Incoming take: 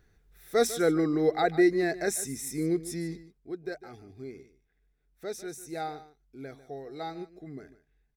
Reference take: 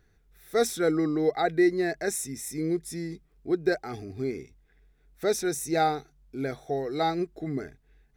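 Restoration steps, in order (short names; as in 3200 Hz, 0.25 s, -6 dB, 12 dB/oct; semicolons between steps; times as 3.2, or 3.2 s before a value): inverse comb 0.149 s -15.5 dB; gain correction +11 dB, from 3.23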